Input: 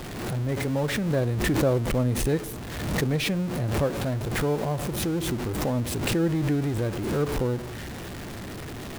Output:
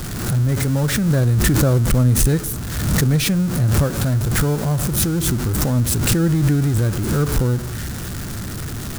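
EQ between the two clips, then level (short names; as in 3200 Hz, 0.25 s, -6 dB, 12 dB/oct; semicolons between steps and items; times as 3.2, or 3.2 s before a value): tone controls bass +12 dB, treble +14 dB; bell 1400 Hz +8.5 dB 0.65 oct; 0.0 dB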